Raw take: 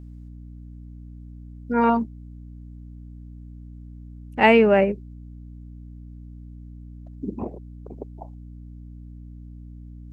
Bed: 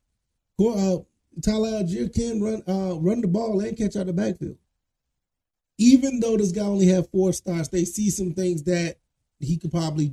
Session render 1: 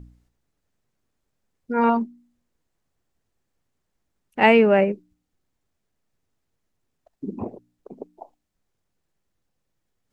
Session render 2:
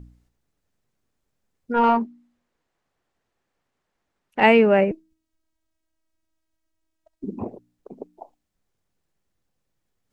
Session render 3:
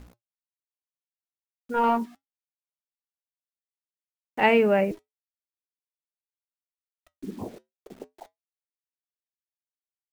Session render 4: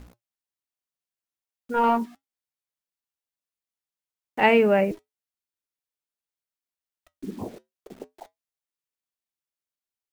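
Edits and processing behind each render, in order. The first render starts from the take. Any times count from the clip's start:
de-hum 60 Hz, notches 5
1.74–4.41 overdrive pedal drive 13 dB, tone 2000 Hz, clips at -8 dBFS; 4.91–7.24 robotiser 319 Hz
requantised 8-bit, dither none; flange 0.33 Hz, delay 3.9 ms, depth 2.9 ms, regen -78%
gain +1.5 dB

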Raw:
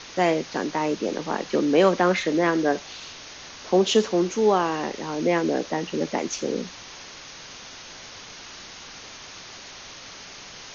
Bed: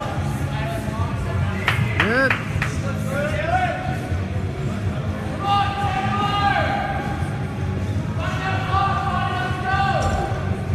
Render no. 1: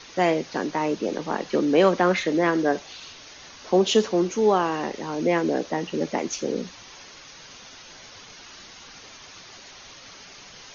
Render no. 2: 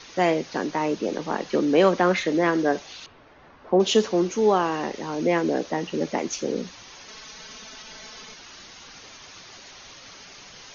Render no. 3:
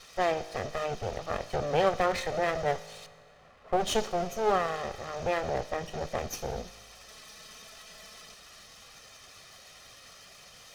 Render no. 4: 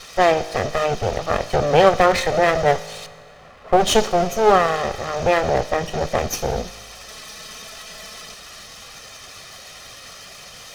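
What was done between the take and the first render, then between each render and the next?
denoiser 6 dB, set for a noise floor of -42 dBFS
3.06–3.8 LPF 1300 Hz; 7.08–8.34 comb 4.6 ms, depth 96%
minimum comb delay 1.6 ms; resonator 53 Hz, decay 1.9 s, harmonics all, mix 50%
gain +12 dB

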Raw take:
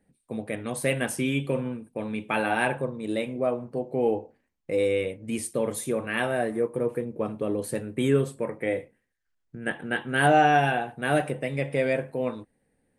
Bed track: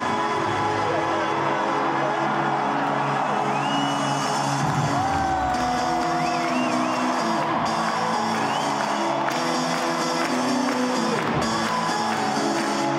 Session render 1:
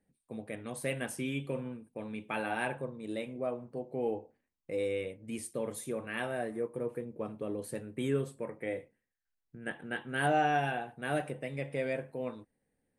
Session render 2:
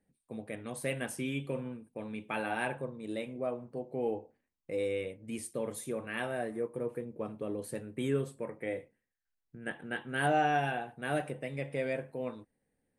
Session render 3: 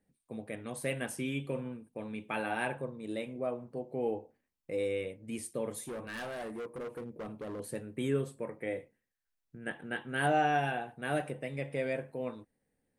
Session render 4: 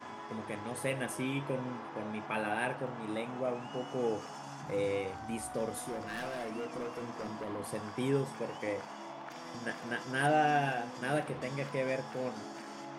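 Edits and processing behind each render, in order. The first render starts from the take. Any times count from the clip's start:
gain -9 dB
nothing audible
5.87–7.6 hard clip -37 dBFS
add bed track -22 dB

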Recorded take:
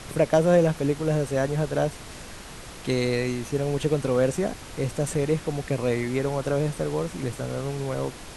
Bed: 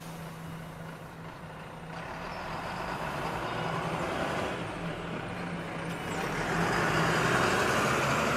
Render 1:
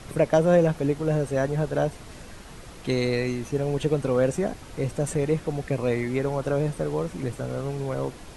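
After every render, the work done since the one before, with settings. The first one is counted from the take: denoiser 6 dB, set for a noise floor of -41 dBFS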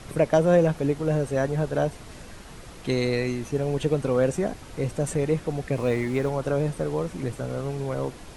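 5.76–6.3 G.711 law mismatch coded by mu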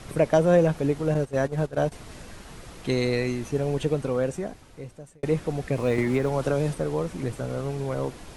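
1.14–1.92 gate -27 dBFS, range -12 dB; 3.69–5.23 fade out linear; 5.98–6.75 three-band squash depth 100%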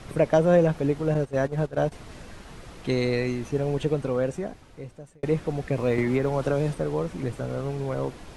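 high shelf 7200 Hz -8.5 dB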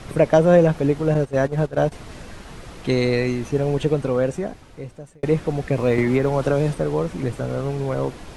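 gain +5 dB

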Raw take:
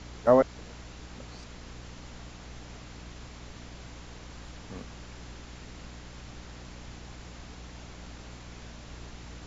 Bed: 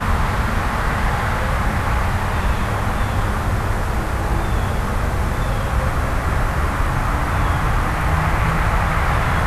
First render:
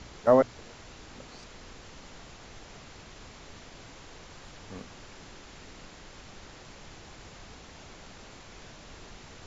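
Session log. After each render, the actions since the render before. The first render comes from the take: de-hum 60 Hz, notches 5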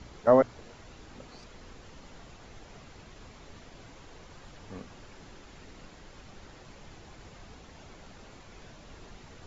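denoiser 6 dB, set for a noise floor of -50 dBFS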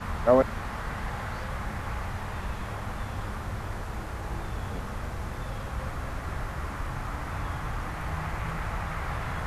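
add bed -14.5 dB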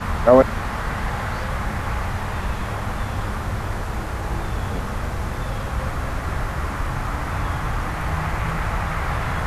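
gain +8.5 dB; limiter -1 dBFS, peak gain reduction 2.5 dB

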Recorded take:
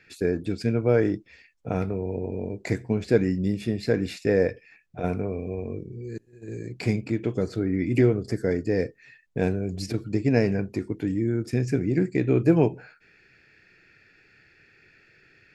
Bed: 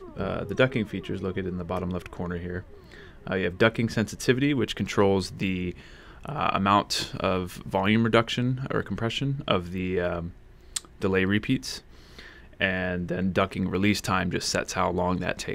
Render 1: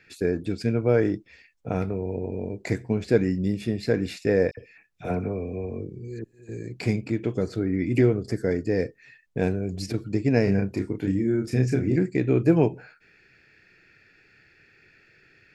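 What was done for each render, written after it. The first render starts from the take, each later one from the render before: 4.51–6.49 dispersion lows, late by 64 ms, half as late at 2200 Hz; 10.44–11.96 doubler 31 ms -3.5 dB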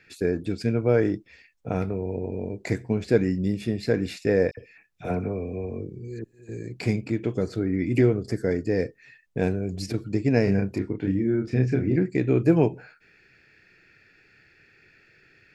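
10.78–12.1 LPF 3600 Hz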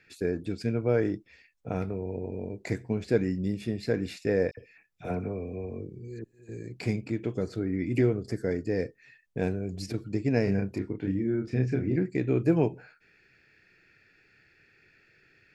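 gain -4.5 dB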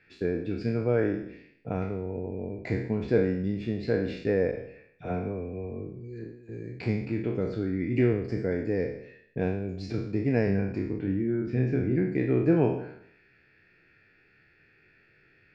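spectral trails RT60 0.69 s; air absorption 210 m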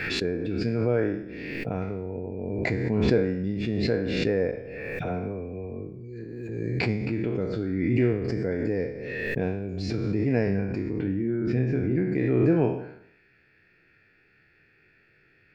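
backwards sustainer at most 25 dB/s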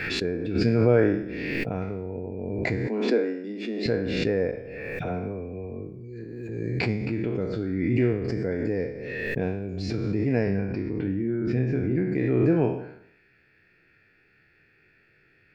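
0.55–1.65 gain +5 dB; 2.87–3.86 steep high-pass 220 Hz 72 dB/oct; 10.44–11.05 brick-wall FIR low-pass 6100 Hz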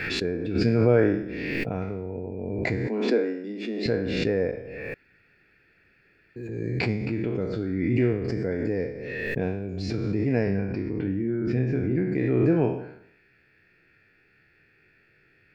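4.94–6.36 room tone; 10.85–11.5 notch 3800 Hz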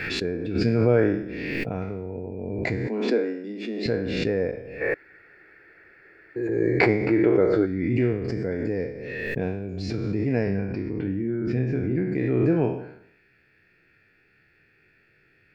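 4.81–7.66 spectral gain 300–2300 Hz +11 dB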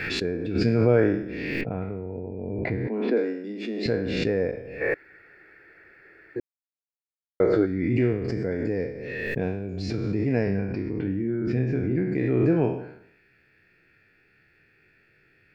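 1.61–3.17 air absorption 340 m; 6.4–7.4 mute

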